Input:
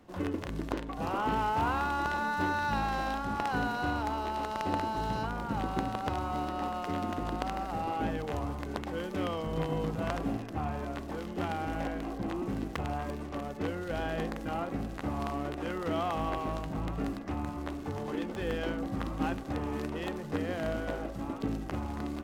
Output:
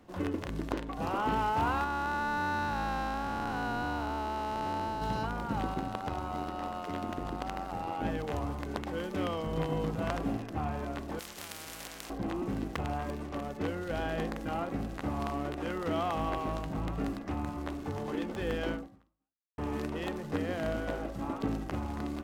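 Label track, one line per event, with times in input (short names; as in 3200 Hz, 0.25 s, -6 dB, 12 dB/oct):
1.840000	5.020000	time blur width 0.384 s
5.740000	8.050000	AM modulator 90 Hz, depth 45%
11.190000	12.100000	spectral compressor 4:1
18.750000	19.580000	fade out exponential
21.220000	21.640000	bell 1000 Hz +4 dB 1.7 oct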